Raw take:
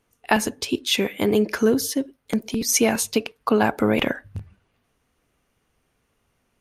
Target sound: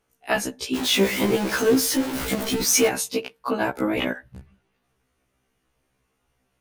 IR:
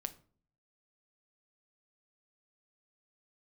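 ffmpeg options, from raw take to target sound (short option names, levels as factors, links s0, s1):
-filter_complex "[0:a]asettb=1/sr,asplit=3[s0][s1][s2];[s0]atrim=end=0.754[s3];[s1]atrim=start=0.75:end=2.88,asetpts=PTS-STARTPTS,afade=t=in:d=0.004:c=qsin,afade=t=out:st=2.126:d=0.004:c=qsin,aeval=exprs='val(0)+0.5*0.1*sgn(val(0))':c=same[s4];[s2]atrim=start=2.876[s5];[s3][s4]acrossfade=d=0.004:c1=hsin:c2=qsin[s6];[s6][s5]acrossfade=d=0.004:c1=qsin:c2=hsin,afftfilt=real='re*1.73*eq(mod(b,3),0)':imag='im*1.73*eq(mod(b,3),0)':win_size=2048:overlap=0.75"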